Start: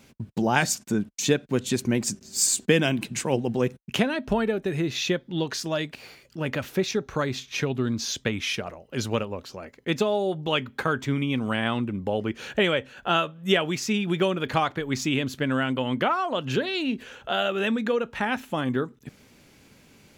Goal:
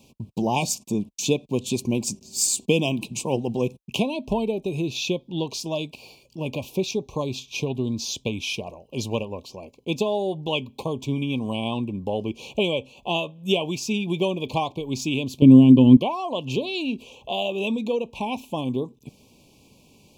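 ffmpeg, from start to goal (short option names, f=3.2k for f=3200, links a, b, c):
-filter_complex "[0:a]asettb=1/sr,asplit=3[a][b][c];[a]atrim=end=15.424[d];[b]atrim=start=15.42:end=15.97,asetpts=PTS-STARTPTS,afade=t=in:d=0.004:c=qsin,afade=t=out:st=0.546:d=0.004:c=qsin,lowshelf=f=450:t=q:w=1.5:g=14[e];[c]atrim=start=15.966[f];[d][e]acrossfade=d=0.004:c1=hsin:c2=qsin[g];[g][f]acrossfade=d=0.004:c1=qsin:c2=hsin,asuperstop=centerf=1600:order=20:qfactor=1.3"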